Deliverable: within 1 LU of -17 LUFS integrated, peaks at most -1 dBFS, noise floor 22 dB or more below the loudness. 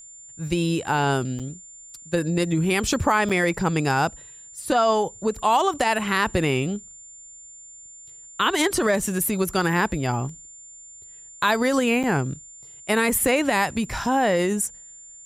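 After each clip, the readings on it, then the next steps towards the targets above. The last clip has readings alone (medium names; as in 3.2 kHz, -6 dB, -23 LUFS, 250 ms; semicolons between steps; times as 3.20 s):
dropouts 3; longest dropout 6.6 ms; steady tone 7.2 kHz; tone level -42 dBFS; loudness -22.5 LUFS; peak level -6.5 dBFS; loudness target -17.0 LUFS
-> interpolate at 1.39/3.29/12.03 s, 6.6 ms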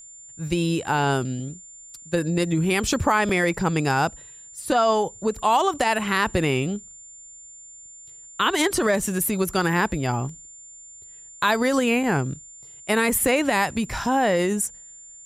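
dropouts 0; steady tone 7.2 kHz; tone level -42 dBFS
-> band-stop 7.2 kHz, Q 30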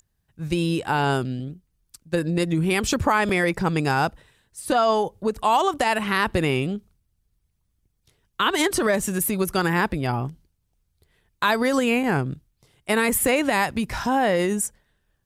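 steady tone not found; loudness -22.5 LUFS; peak level -7.0 dBFS; loudness target -17.0 LUFS
-> trim +5.5 dB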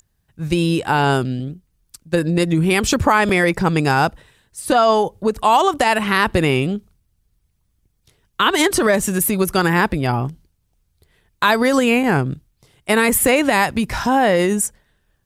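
loudness -17.0 LUFS; peak level -1.5 dBFS; noise floor -67 dBFS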